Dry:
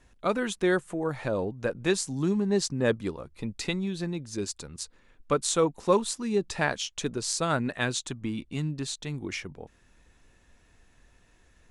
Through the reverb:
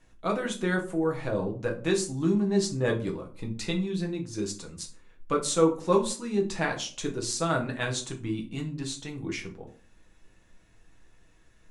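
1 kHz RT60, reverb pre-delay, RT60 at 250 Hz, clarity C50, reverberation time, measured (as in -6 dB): 0.40 s, 6 ms, 0.50 s, 12.0 dB, 0.45 s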